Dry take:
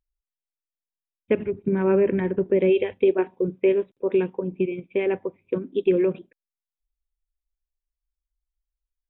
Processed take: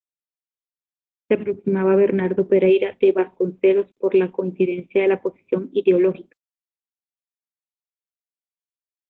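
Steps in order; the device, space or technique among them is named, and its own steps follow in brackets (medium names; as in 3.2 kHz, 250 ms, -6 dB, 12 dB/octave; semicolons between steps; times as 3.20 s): 3.16–4.66 s: high-pass 78 Hz 6 dB/octave; video call (high-pass 160 Hz 12 dB/octave; level rider gain up to 10.5 dB; gate -46 dBFS, range -30 dB; trim -3.5 dB; Opus 16 kbps 48 kHz)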